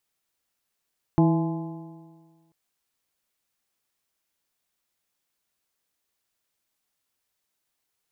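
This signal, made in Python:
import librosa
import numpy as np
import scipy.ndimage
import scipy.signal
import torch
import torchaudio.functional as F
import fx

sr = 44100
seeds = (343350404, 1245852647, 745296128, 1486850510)

y = fx.additive_stiff(sr, length_s=1.34, hz=162.0, level_db=-16.5, upper_db=(-1, -19, -12, -10, -18), decay_s=1.62, stiffness=0.0036)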